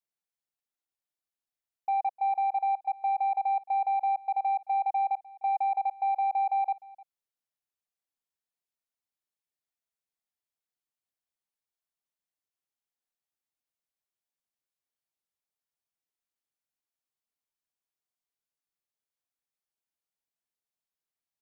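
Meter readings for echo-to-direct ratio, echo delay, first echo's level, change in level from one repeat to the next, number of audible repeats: -21.5 dB, 303 ms, -21.5 dB, no regular repeats, 1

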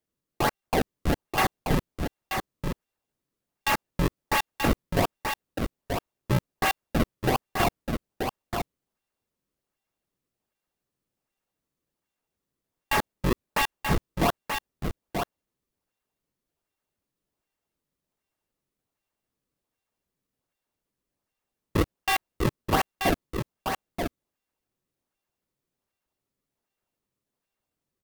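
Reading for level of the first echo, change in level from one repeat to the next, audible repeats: -5.5 dB, no regular repeats, 1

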